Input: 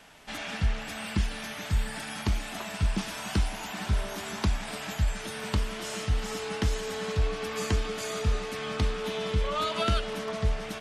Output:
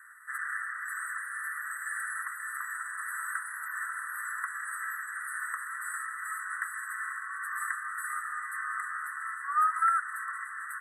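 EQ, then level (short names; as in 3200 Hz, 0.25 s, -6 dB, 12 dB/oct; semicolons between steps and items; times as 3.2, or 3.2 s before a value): steep high-pass 1200 Hz 72 dB/oct; brick-wall FIR band-stop 2000–7700 Hz; high shelf 5400 Hz -7 dB; +8.5 dB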